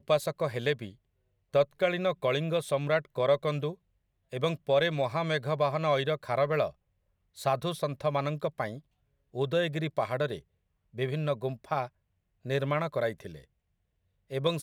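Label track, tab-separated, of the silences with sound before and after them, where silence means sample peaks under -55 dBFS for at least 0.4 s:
0.950000	1.530000	silence
3.750000	4.320000	silence
6.730000	7.360000	silence
8.800000	9.340000	silence
10.420000	10.930000	silence
11.890000	12.450000	silence
13.450000	14.300000	silence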